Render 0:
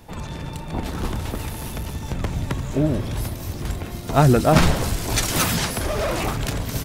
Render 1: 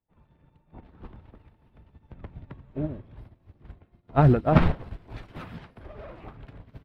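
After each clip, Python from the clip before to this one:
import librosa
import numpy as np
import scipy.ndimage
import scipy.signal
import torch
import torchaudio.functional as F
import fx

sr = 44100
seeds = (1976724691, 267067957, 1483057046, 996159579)

y = fx.air_absorb(x, sr, metres=460.0)
y = fx.upward_expand(y, sr, threshold_db=-39.0, expansion=2.5)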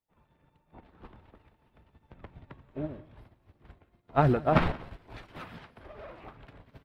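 y = fx.low_shelf(x, sr, hz=320.0, db=-9.0)
y = y + 10.0 ** (-21.0 / 20.0) * np.pad(y, (int(179 * sr / 1000.0), 0))[:len(y)]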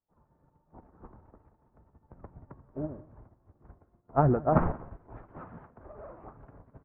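y = scipy.signal.sosfilt(scipy.signal.butter(4, 1300.0, 'lowpass', fs=sr, output='sos'), x)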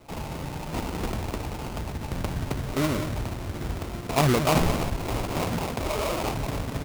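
y = fx.sample_hold(x, sr, seeds[0], rate_hz=1700.0, jitter_pct=20)
y = fx.env_flatten(y, sr, amount_pct=70)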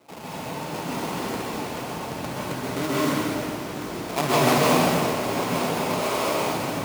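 y = scipy.signal.sosfilt(scipy.signal.butter(2, 210.0, 'highpass', fs=sr, output='sos'), x)
y = fx.rev_plate(y, sr, seeds[1], rt60_s=1.9, hf_ratio=0.9, predelay_ms=115, drr_db=-7.5)
y = y * 10.0 ** (-3.0 / 20.0)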